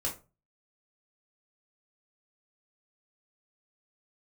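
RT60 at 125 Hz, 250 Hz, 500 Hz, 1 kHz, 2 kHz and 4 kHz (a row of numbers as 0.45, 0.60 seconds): 0.50, 0.35, 0.35, 0.30, 0.25, 0.20 seconds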